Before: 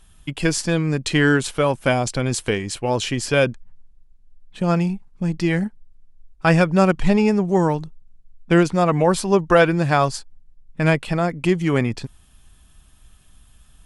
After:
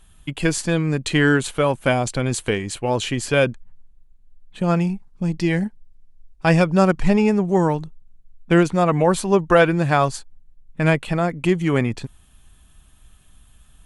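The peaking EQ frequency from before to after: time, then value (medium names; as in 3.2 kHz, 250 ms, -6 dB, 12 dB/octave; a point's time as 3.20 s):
peaking EQ -7 dB 0.29 oct
4.75 s 5.3 kHz
5.38 s 1.3 kHz
6.50 s 1.3 kHz
7.27 s 5.1 kHz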